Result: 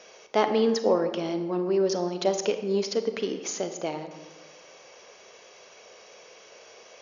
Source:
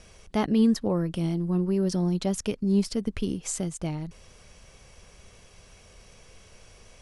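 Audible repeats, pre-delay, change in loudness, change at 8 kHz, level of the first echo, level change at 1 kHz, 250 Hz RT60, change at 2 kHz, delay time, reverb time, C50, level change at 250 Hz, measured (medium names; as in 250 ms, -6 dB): no echo, 31 ms, 0.0 dB, 0.0 dB, no echo, +7.0 dB, 1.5 s, +5.0 dB, no echo, 1.3 s, 9.5 dB, -5.5 dB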